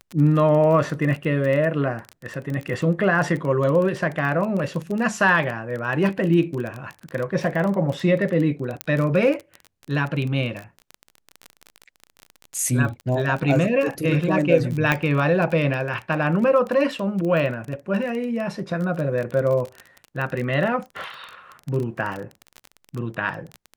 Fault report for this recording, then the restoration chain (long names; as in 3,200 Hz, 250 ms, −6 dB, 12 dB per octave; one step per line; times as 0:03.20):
surface crackle 22 per second −26 dBFS
0:08.81: click −8 dBFS
0:14.92: click −6 dBFS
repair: click removal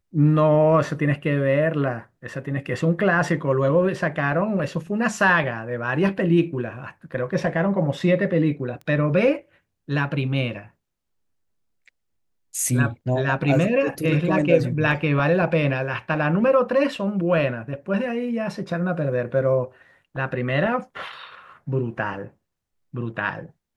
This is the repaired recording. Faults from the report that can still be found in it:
0:08.81: click
0:14.92: click